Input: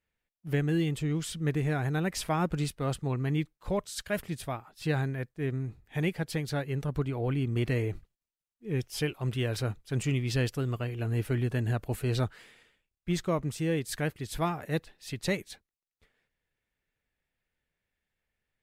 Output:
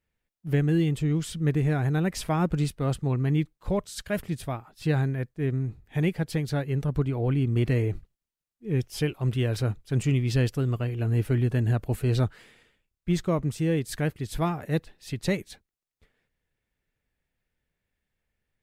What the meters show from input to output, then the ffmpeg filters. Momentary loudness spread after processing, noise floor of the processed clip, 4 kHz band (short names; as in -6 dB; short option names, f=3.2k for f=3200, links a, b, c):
7 LU, under -85 dBFS, 0.0 dB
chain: -af "lowshelf=f=440:g=6"